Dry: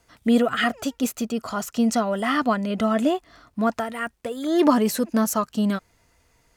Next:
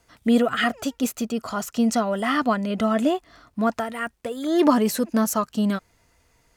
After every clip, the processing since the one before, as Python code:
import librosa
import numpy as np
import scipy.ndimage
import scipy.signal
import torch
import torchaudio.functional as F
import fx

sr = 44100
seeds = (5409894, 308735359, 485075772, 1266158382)

y = x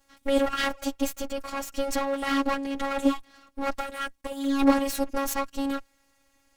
y = fx.lower_of_two(x, sr, delay_ms=6.6)
y = fx.robotise(y, sr, hz=276.0)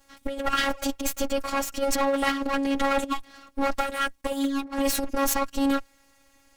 y = fx.over_compress(x, sr, threshold_db=-27.0, ratio=-0.5)
y = F.gain(torch.from_numpy(y), 3.5).numpy()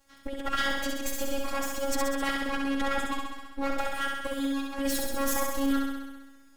y = fx.room_flutter(x, sr, wall_m=11.3, rt60_s=1.2)
y = F.gain(torch.from_numpy(y), -6.0).numpy()